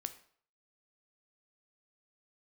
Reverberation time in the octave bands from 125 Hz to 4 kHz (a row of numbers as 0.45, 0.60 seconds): 0.50, 0.50, 0.55, 0.55, 0.50, 0.45 seconds